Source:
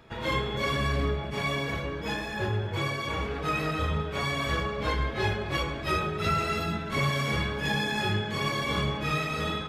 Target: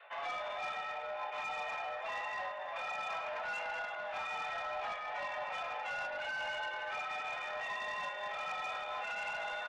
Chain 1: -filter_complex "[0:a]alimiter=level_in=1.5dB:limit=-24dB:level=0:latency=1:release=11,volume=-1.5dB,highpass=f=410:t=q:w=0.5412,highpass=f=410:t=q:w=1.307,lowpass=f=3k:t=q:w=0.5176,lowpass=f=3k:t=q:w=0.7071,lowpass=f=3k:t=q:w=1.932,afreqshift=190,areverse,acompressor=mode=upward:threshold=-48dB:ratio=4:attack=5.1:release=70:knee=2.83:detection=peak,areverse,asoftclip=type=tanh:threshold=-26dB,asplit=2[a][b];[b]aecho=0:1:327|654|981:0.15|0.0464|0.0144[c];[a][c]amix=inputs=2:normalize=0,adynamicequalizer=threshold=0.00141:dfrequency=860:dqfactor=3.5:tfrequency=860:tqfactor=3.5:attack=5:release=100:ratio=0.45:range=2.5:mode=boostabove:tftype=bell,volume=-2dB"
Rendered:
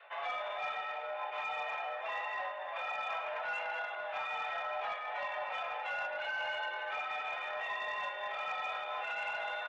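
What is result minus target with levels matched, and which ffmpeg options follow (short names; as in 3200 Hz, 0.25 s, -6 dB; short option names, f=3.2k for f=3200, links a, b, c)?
soft clip: distortion -9 dB
-filter_complex "[0:a]alimiter=level_in=1.5dB:limit=-24dB:level=0:latency=1:release=11,volume=-1.5dB,highpass=f=410:t=q:w=0.5412,highpass=f=410:t=q:w=1.307,lowpass=f=3k:t=q:w=0.5176,lowpass=f=3k:t=q:w=0.7071,lowpass=f=3k:t=q:w=1.932,afreqshift=190,areverse,acompressor=mode=upward:threshold=-48dB:ratio=4:attack=5.1:release=70:knee=2.83:detection=peak,areverse,asoftclip=type=tanh:threshold=-32dB,asplit=2[a][b];[b]aecho=0:1:327|654|981:0.15|0.0464|0.0144[c];[a][c]amix=inputs=2:normalize=0,adynamicequalizer=threshold=0.00141:dfrequency=860:dqfactor=3.5:tfrequency=860:tqfactor=3.5:attack=5:release=100:ratio=0.45:range=2.5:mode=boostabove:tftype=bell,volume=-2dB"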